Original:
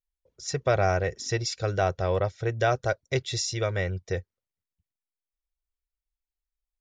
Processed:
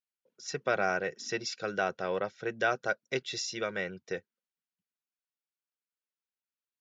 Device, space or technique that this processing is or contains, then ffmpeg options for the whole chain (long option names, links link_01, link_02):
television speaker: -af "highpass=frequency=180:width=0.5412,highpass=frequency=180:width=1.3066,equalizer=frequency=220:width_type=q:width=4:gain=8,equalizer=frequency=630:width_type=q:width=4:gain=-3,equalizer=frequency=1500:width_type=q:width=4:gain=7,equalizer=frequency=2700:width_type=q:width=4:gain=5,lowpass=frequency=6800:width=0.5412,lowpass=frequency=6800:width=1.3066,volume=-5dB"